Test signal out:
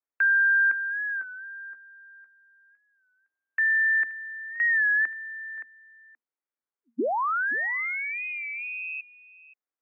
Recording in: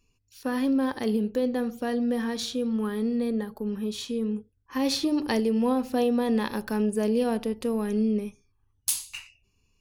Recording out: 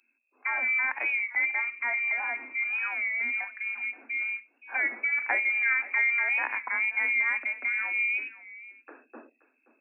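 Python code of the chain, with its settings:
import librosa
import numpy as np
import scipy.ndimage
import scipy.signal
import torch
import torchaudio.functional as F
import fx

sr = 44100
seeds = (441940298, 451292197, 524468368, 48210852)

y = fx.low_shelf(x, sr, hz=460.0, db=-10.5)
y = y + 10.0 ** (-18.0 / 20.0) * np.pad(y, (int(526 * sr / 1000.0), 0))[:len(y)]
y = fx.freq_invert(y, sr, carrier_hz=2600)
y = scipy.signal.sosfilt(scipy.signal.cheby1(10, 1.0, 230.0, 'highpass', fs=sr, output='sos'), y)
y = fx.record_warp(y, sr, rpm=33.33, depth_cents=100.0)
y = y * 10.0 ** (4.5 / 20.0)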